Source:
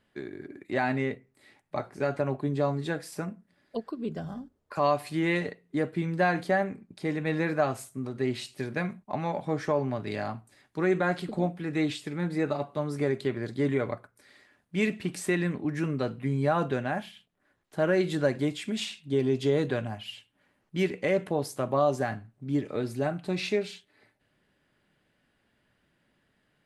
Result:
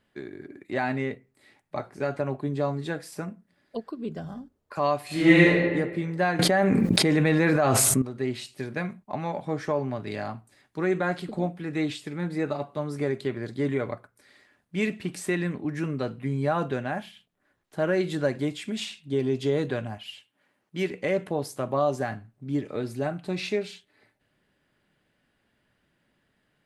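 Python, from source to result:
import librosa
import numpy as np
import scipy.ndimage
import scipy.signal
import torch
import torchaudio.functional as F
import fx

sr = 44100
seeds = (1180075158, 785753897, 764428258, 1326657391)

y = fx.reverb_throw(x, sr, start_s=5.06, length_s=0.56, rt60_s=1.4, drr_db=-10.5)
y = fx.env_flatten(y, sr, amount_pct=100, at=(6.39, 8.02))
y = fx.highpass(y, sr, hz=fx.line((19.97, 410.0), (20.9, 160.0)), slope=6, at=(19.97, 20.9), fade=0.02)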